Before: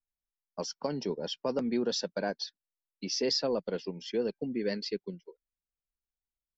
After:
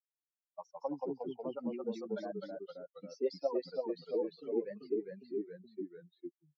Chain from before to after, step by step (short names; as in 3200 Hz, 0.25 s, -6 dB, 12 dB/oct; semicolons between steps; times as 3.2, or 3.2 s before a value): per-bin expansion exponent 3; wah 5.2 Hz 330–1000 Hz, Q 3.5; echoes that change speed 0.128 s, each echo -1 st, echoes 3; gain +7.5 dB